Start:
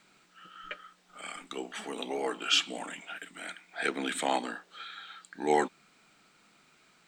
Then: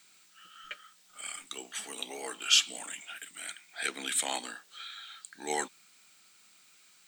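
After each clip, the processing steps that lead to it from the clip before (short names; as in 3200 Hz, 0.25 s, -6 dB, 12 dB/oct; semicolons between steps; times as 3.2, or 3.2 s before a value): pre-emphasis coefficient 0.9; gain +9 dB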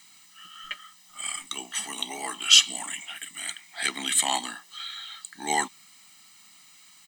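comb 1 ms, depth 73%; gain +5.5 dB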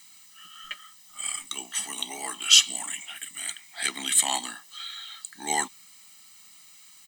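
high shelf 5900 Hz +7 dB; gain -2.5 dB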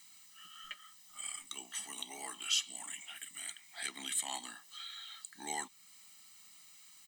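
compressor 1.5:1, threshold -40 dBFS, peak gain reduction 10.5 dB; gain -6.5 dB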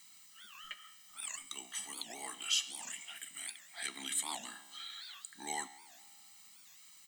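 resonator 68 Hz, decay 1.7 s, harmonics all, mix 60%; record warp 78 rpm, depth 250 cents; gain +7 dB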